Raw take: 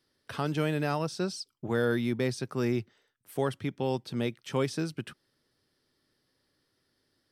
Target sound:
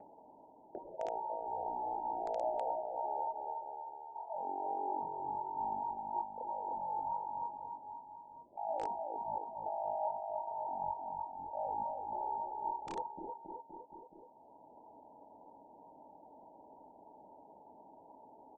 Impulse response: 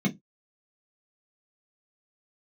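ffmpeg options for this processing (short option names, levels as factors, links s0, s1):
-filter_complex "[0:a]areverse,acompressor=threshold=0.00891:ratio=16,areverse,equalizer=f=890:t=o:w=0.49:g=12.5,aecho=1:1:120|228|325.2|412.7|491.4:0.631|0.398|0.251|0.158|0.1,lowpass=f=2100:t=q:w=0.5098,lowpass=f=2100:t=q:w=0.6013,lowpass=f=2100:t=q:w=0.9,lowpass=f=2100:t=q:w=2.563,afreqshift=-2500,acrossover=split=260|1100[s0][s1][s2];[s1]aeval=exprs='(mod(168*val(0)+1,2)-1)/168':c=same[s3];[s0][s3][s2]amix=inputs=3:normalize=0,acompressor=mode=upward:threshold=0.00355:ratio=2.5,asetrate=17375,aresample=44100,volume=1.58"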